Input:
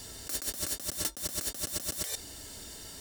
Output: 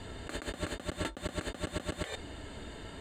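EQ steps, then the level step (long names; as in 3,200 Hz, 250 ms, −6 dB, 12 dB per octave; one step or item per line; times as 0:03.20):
moving average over 8 samples
high-frequency loss of the air 58 metres
+6.5 dB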